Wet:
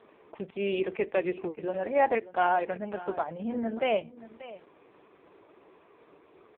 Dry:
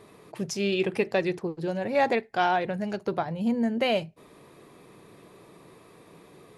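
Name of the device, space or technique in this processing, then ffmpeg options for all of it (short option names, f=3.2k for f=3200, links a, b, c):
satellite phone: -filter_complex "[0:a]asettb=1/sr,asplit=3[a][b][c];[a]atrim=end=3.384[d];[b]atrim=start=3.38:end=3.82,asetpts=PTS-STARTPTS,afade=t=in:d=0.004:c=qsin,afade=t=out:st=0.436:d=0.004:c=qsin,bandreject=f=118.2:t=h:w=4,bandreject=f=236.4:t=h:w=4,bandreject=f=354.6:t=h:w=4,bandreject=f=472.8:t=h:w=4,bandreject=f=591:t=h:w=4,bandreject=f=709.2:t=h:w=4,bandreject=f=827.4:t=h:w=4,bandreject=f=945.6:t=h:w=4,bandreject=f=1.0638k:t=h:w=4[e];[c]atrim=start=3.816[f];[d][e]acrossfade=d=0.004:c1=hsin:c2=qsin[g];[g][f]acrossfade=d=0.004:c1=qsin:c2=hsin,highpass=310,lowpass=3k,aecho=1:1:584:0.141" -ar 8000 -c:a libopencore_amrnb -b:a 4750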